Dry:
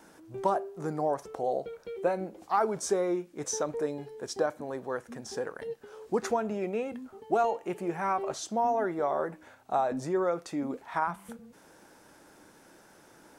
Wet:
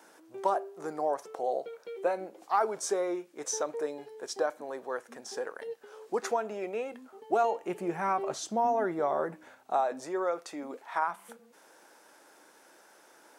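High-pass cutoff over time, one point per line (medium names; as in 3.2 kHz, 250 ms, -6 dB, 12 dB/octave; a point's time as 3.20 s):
7.12 s 390 Hz
8.02 s 120 Hz
9.32 s 120 Hz
9.92 s 440 Hz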